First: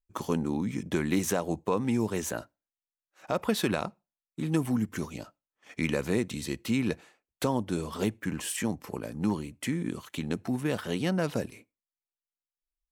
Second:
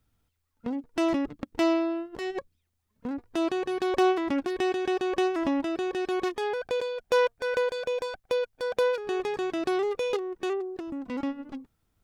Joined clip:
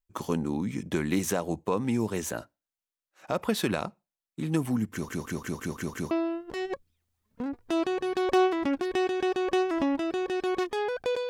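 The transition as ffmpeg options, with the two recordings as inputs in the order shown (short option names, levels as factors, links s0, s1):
-filter_complex "[0:a]apad=whole_dur=11.29,atrim=end=11.29,asplit=7[s0][s1][s2][s3][s4][s5][s6];[s0]atrim=end=5.092[s7];[s1]atrim=start=4.918:end=5.092[s8];[s2]atrim=start=4.918:end=5.092[s9];[s3]atrim=start=4.918:end=5.092[s10];[s4]atrim=start=4.918:end=5.092[s11];[s5]atrim=start=4.918:end=5.092[s12];[s6]atrim=start=4.918:end=5.092[s13];[1:a]atrim=start=1.758:end=6.94[s14];[s7][s8]acrossfade=d=0.004:c1=hsin:c2=hsin[s15];[s15][s9]acrossfade=d=0.004:c1=hsin:c2=hsin[s16];[s16][s10]acrossfade=d=0.004:c1=hsin:c2=hsin[s17];[s17][s11]acrossfade=d=0.004:c1=hsin:c2=hsin[s18];[s18][s12]acrossfade=d=0.004:c1=hsin:c2=hsin[s19];[s19][s13]acrossfade=d=0.004:c1=hsin:c2=hsin[s20];[s20][s14]acrossfade=d=0.004:c1=hsin:c2=hsin"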